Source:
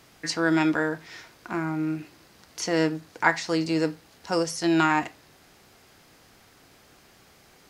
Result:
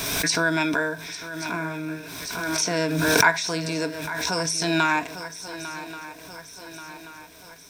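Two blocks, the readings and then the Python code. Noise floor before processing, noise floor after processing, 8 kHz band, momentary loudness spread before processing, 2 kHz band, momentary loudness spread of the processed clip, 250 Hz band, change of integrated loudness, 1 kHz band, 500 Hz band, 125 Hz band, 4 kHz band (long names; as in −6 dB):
−56 dBFS, −45 dBFS, +10.5 dB, 15 LU, +5.0 dB, 19 LU, −2.0 dB, +1.5 dB, +2.0 dB, +0.5 dB, +2.5 dB, +8.0 dB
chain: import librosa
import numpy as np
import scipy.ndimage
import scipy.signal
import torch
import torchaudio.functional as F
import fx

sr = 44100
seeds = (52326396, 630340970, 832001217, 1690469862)

p1 = fx.ripple_eq(x, sr, per_octave=1.6, db=11)
p2 = p1 + fx.echo_swing(p1, sr, ms=1132, ratio=3, feedback_pct=52, wet_db=-14, dry=0)
p3 = fx.dmg_crackle(p2, sr, seeds[0], per_s=590.0, level_db=-50.0)
p4 = fx.high_shelf(p3, sr, hz=2700.0, db=7.5)
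p5 = fx.pre_swell(p4, sr, db_per_s=29.0)
y = p5 * librosa.db_to_amplitude(-2.0)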